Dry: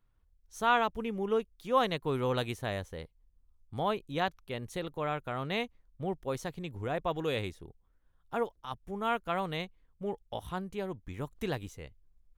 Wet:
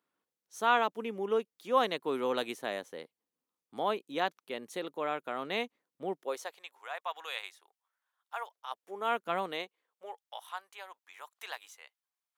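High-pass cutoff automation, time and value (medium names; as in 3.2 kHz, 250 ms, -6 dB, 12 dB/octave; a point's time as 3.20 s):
high-pass 24 dB/octave
6.13 s 240 Hz
6.66 s 810 Hz
8.42 s 810 Hz
9.32 s 200 Hz
10.28 s 810 Hz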